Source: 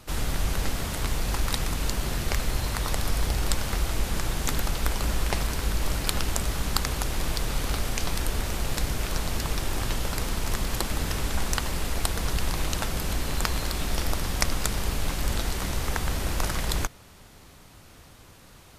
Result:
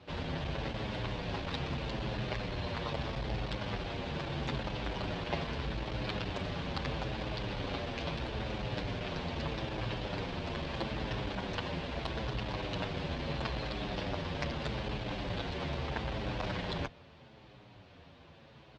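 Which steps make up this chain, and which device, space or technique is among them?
barber-pole flanger into a guitar amplifier (barber-pole flanger 8 ms −0.78 Hz; soft clipping −21 dBFS, distortion −19 dB; loudspeaker in its box 86–3,800 Hz, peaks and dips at 130 Hz +3 dB, 570 Hz +4 dB, 1,300 Hz −6 dB, 2,000 Hz −3 dB)

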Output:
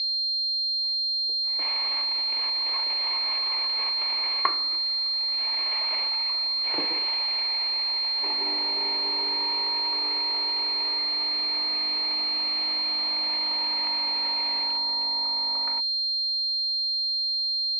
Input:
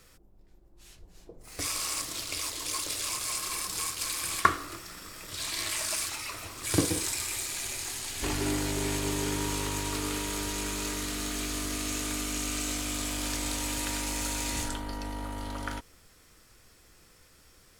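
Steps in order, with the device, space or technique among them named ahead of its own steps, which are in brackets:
toy sound module (linearly interpolated sample-rate reduction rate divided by 4×; switching amplifier with a slow clock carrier 4,200 Hz; loudspeaker in its box 500–4,700 Hz, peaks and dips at 910 Hz +8 dB, 1,500 Hz −10 dB, 2,200 Hz +10 dB, 4,000 Hz +5 dB)
level −1.5 dB

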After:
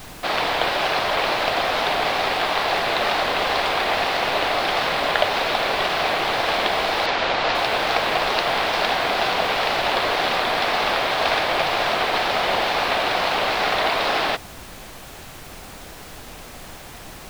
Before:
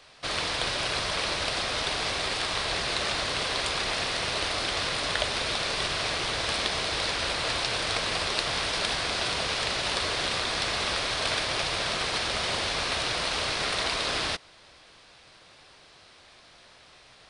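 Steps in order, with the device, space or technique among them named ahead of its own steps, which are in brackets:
horn gramophone (band-pass filter 210–3,100 Hz; parametric band 770 Hz +7.5 dB 0.58 octaves; tape wow and flutter; pink noise bed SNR 17 dB)
0:07.06–0:07.55: low-pass filter 6,800 Hz 24 dB per octave
level +8 dB

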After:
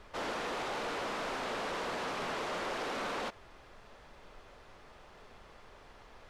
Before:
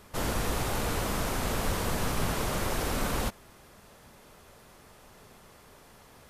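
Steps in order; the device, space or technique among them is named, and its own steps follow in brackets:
aircraft cabin announcement (band-pass filter 360–4,000 Hz; soft clipping −31 dBFS, distortion −15 dB; brown noise bed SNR 18 dB)

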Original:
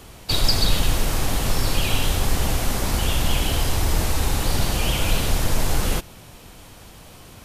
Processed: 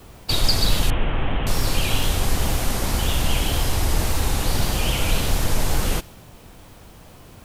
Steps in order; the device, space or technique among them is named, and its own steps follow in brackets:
plain cassette with noise reduction switched in (one half of a high-frequency compander decoder only; tape wow and flutter; white noise bed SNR 37 dB)
0:00.90–0:01.47: Butterworth low-pass 3,300 Hz 72 dB per octave

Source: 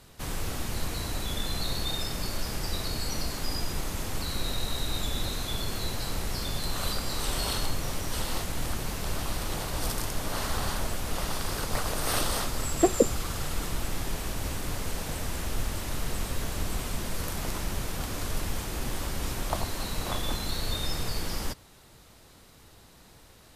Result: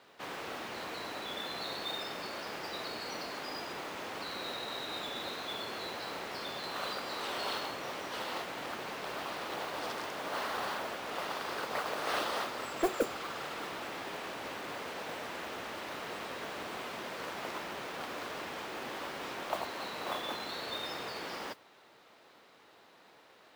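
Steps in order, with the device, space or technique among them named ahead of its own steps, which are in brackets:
carbon microphone (band-pass filter 400–3,100 Hz; soft clipping −22 dBFS, distortion −11 dB; noise that follows the level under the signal 18 dB)

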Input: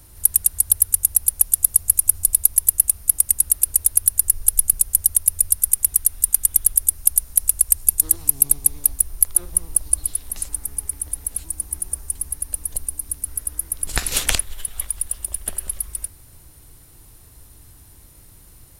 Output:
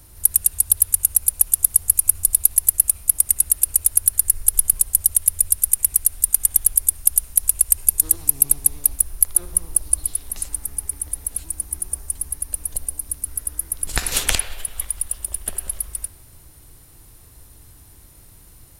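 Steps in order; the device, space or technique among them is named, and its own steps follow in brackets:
filtered reverb send (on a send: high-pass filter 360 Hz 24 dB per octave + low-pass filter 3,700 Hz 12 dB per octave + convolution reverb RT60 1.2 s, pre-delay 54 ms, DRR 8.5 dB)

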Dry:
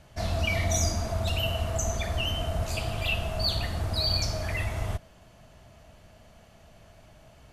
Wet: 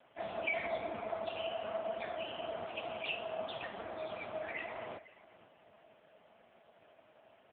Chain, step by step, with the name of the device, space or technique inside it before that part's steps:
low-pass filter 11,000 Hz 12 dB per octave
dynamic equaliser 8,500 Hz, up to −3 dB, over −44 dBFS, Q 1.3
satellite phone (band-pass filter 310–3,200 Hz; single-tap delay 507 ms −19.5 dB; level −1 dB; AMR narrowband 5.15 kbit/s 8,000 Hz)

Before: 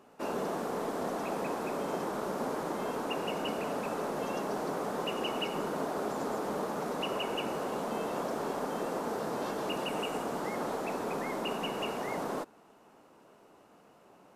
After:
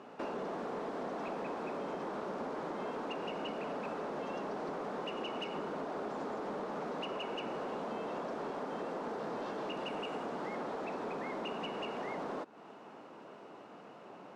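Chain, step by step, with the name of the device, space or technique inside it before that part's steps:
AM radio (band-pass filter 140–4,100 Hz; downward compressor 4 to 1, threshold −45 dBFS, peak gain reduction 13 dB; soft clipping −37.5 dBFS, distortion −21 dB)
level +7.5 dB

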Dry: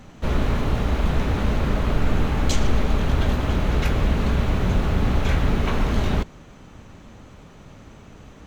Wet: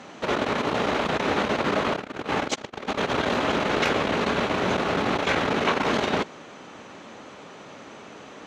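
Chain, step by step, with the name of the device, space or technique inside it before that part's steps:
public-address speaker with an overloaded transformer (saturating transformer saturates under 74 Hz; band-pass filter 340–6,500 Hz)
level +7.5 dB

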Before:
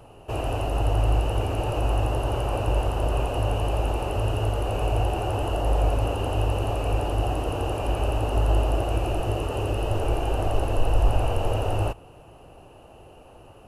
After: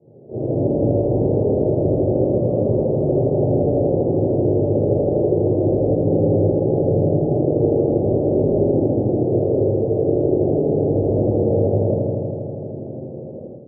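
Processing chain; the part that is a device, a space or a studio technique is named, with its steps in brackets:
Butterworth low-pass 550 Hz 36 dB per octave
low-pass filter 1,500 Hz
bucket-brigade delay 80 ms, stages 1,024, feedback 83%, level −4 dB
far laptop microphone (convolution reverb RT60 0.40 s, pre-delay 13 ms, DRR −8.5 dB; high-pass filter 130 Hz 24 dB per octave; automatic gain control)
level −5 dB

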